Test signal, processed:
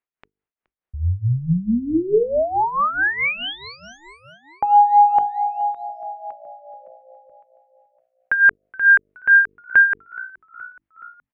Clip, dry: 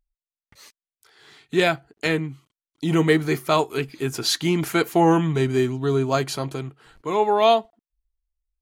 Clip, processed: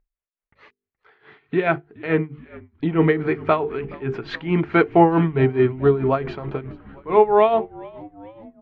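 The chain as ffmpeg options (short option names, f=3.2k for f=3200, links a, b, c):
-filter_complex "[0:a]lowpass=f=2.4k:w=0.5412,lowpass=f=2.4k:w=1.3066,equalizer=f=430:w=6.8:g=4.5,bandreject=f=50:t=h:w=6,bandreject=f=100:t=h:w=6,bandreject=f=150:t=h:w=6,bandreject=f=200:t=h:w=6,bandreject=f=250:t=h:w=6,bandreject=f=300:t=h:w=6,bandreject=f=350:t=h:w=6,bandreject=f=400:t=h:w=6,bandreject=f=450:t=h:w=6,tremolo=f=4.6:d=0.77,asplit=6[a][b][c][d][e][f];[b]adelay=422,afreqshift=-60,volume=-22dB[g];[c]adelay=844,afreqshift=-120,volume=-25.9dB[h];[d]adelay=1266,afreqshift=-180,volume=-29.8dB[i];[e]adelay=1688,afreqshift=-240,volume=-33.6dB[j];[f]adelay=2110,afreqshift=-300,volume=-37.5dB[k];[a][g][h][i][j][k]amix=inputs=6:normalize=0,volume=5.5dB"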